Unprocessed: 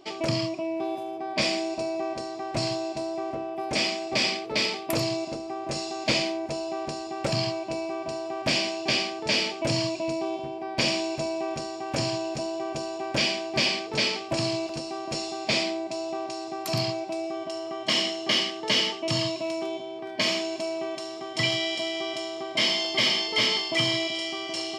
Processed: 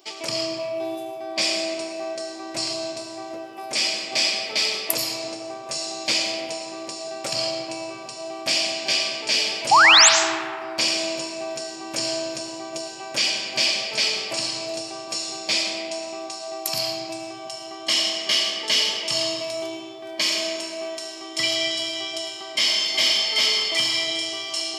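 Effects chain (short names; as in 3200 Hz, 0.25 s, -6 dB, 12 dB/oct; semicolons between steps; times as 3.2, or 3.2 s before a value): RIAA curve recording; painted sound rise, 9.71–10.09, 740–8200 Hz -10 dBFS; on a send: reverb RT60 2.4 s, pre-delay 60 ms, DRR 3.5 dB; on the sum: gain -2.5 dB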